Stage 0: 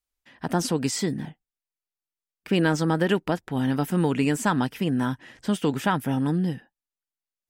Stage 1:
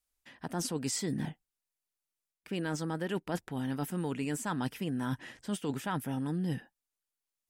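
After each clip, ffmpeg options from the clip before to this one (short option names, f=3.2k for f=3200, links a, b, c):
-af "equalizer=f=10k:t=o:w=1.2:g=5,areverse,acompressor=threshold=-30dB:ratio=12,areverse"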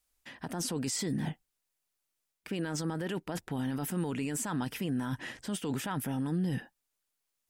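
-af "alimiter=level_in=7dB:limit=-24dB:level=0:latency=1:release=26,volume=-7dB,volume=6dB"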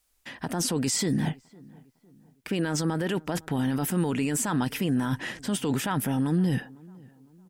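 -filter_complex "[0:a]asplit=2[a][b];[b]adelay=506,lowpass=f=1.4k:p=1,volume=-23.5dB,asplit=2[c][d];[d]adelay=506,lowpass=f=1.4k:p=1,volume=0.45,asplit=2[e][f];[f]adelay=506,lowpass=f=1.4k:p=1,volume=0.45[g];[a][c][e][g]amix=inputs=4:normalize=0,volume=7dB"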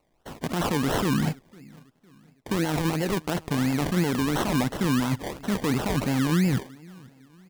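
-af "acrusher=samples=26:mix=1:aa=0.000001:lfo=1:lforange=15.6:lforate=2.9,volume=2dB"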